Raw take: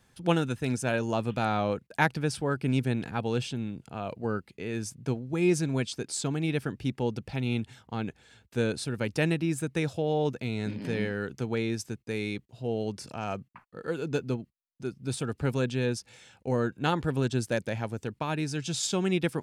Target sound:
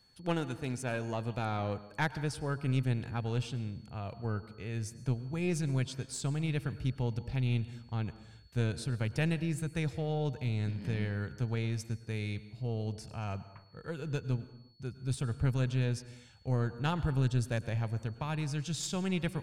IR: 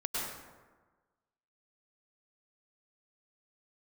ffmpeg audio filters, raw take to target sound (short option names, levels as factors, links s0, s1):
-filter_complex "[0:a]asubboost=boost=8:cutoff=99,aeval=exprs='(tanh(4.47*val(0)+0.5)-tanh(0.5))/4.47':c=same,aeval=exprs='val(0)+0.001*sin(2*PI*4400*n/s)':c=same,asplit=2[s0][s1];[1:a]atrim=start_sample=2205,afade=t=out:st=0.44:d=0.01,atrim=end_sample=19845[s2];[s1][s2]afir=irnorm=-1:irlink=0,volume=0.126[s3];[s0][s3]amix=inputs=2:normalize=0,volume=0.531"